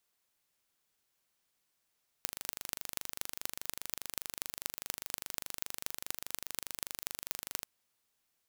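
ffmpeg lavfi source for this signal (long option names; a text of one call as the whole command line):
ffmpeg -f lavfi -i "aevalsrc='0.501*eq(mod(n,1771),0)*(0.5+0.5*eq(mod(n,10626),0))':duration=5.4:sample_rate=44100" out.wav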